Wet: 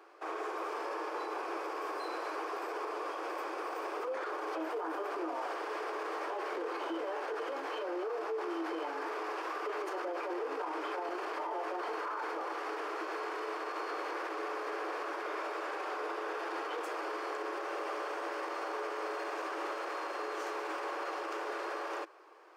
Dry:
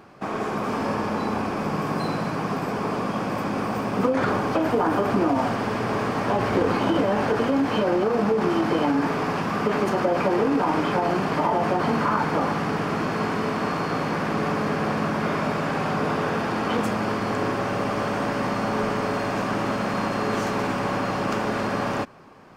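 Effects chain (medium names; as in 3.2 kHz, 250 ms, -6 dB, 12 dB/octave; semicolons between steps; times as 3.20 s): rippled Chebyshev high-pass 320 Hz, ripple 3 dB; peak limiter -23 dBFS, peak gain reduction 11 dB; trim -6.5 dB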